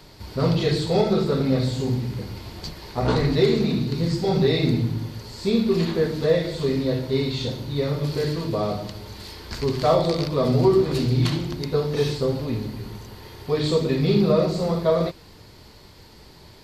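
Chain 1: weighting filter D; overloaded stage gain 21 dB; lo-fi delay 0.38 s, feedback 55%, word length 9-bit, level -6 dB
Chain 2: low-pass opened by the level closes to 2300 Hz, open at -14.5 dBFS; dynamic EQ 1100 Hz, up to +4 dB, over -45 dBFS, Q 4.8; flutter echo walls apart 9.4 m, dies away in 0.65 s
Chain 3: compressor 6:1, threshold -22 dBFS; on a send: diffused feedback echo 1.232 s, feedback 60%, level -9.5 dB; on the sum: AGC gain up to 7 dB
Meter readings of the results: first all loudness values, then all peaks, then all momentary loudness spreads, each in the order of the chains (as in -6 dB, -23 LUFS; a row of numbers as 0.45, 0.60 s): -23.5, -21.5, -20.5 LUFS; -15.0, -5.5, -5.5 dBFS; 8, 15, 8 LU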